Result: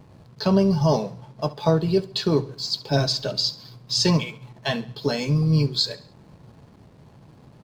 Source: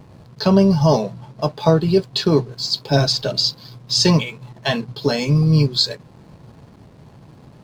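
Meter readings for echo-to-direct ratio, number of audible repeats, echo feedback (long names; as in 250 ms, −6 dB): −17.5 dB, 3, 45%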